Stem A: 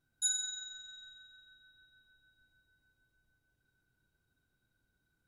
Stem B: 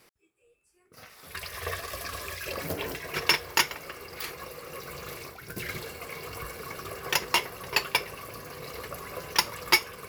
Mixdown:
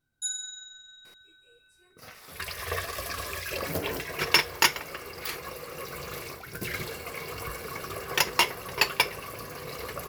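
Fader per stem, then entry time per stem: 0.0, +2.0 decibels; 0.00, 1.05 seconds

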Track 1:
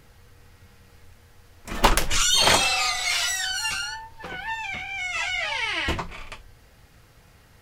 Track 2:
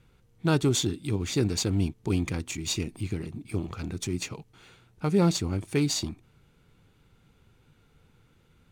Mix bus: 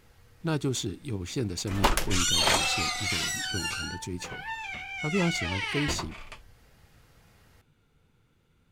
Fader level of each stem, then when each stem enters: −5.5, −5.0 decibels; 0.00, 0.00 seconds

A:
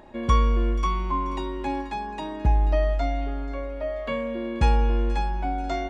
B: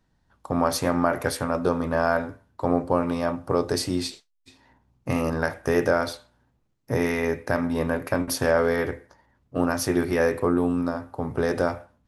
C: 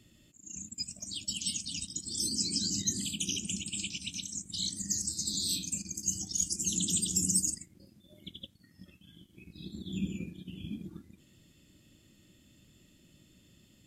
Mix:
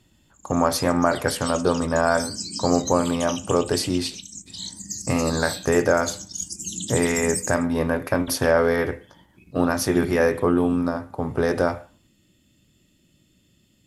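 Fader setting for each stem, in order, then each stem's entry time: muted, +2.5 dB, 0.0 dB; muted, 0.00 s, 0.00 s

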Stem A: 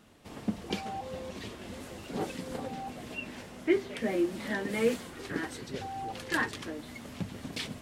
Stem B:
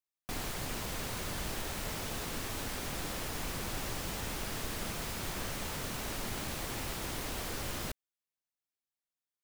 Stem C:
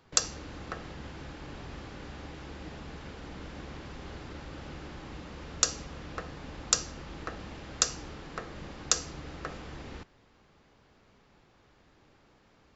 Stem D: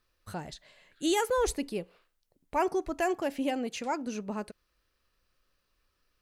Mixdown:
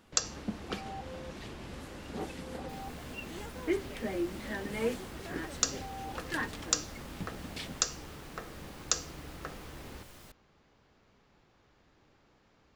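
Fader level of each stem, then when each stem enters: −5.0, −15.0, −3.5, −20.0 decibels; 0.00, 2.40, 0.00, 2.25 seconds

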